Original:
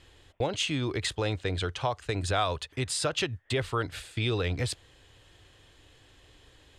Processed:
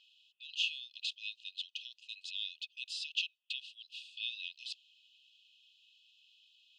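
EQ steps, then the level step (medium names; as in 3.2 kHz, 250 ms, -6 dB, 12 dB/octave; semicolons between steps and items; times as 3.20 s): brick-wall FIR high-pass 2.5 kHz; distance through air 230 m; +2.5 dB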